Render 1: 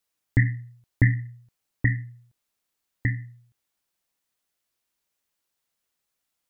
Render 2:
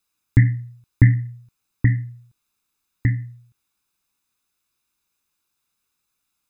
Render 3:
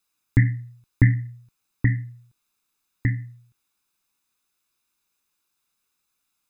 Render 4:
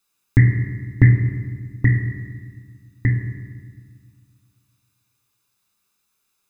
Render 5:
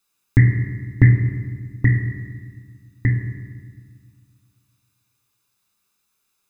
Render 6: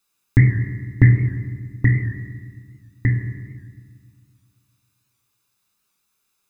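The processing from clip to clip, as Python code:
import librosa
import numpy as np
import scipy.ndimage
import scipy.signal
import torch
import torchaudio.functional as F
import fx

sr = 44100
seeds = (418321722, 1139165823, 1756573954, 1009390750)

y1 = x + 0.57 * np.pad(x, (int(0.8 * sr / 1000.0), 0))[:len(x)]
y1 = y1 * 10.0 ** (3.0 / 20.0)
y2 = fx.peak_eq(y1, sr, hz=62.0, db=-5.0, octaves=2.8)
y3 = fx.rev_fdn(y2, sr, rt60_s=1.5, lf_ratio=1.55, hf_ratio=1.0, size_ms=15.0, drr_db=3.0)
y3 = y3 * 10.0 ** (3.0 / 20.0)
y4 = y3
y5 = fx.record_warp(y4, sr, rpm=78.0, depth_cents=100.0)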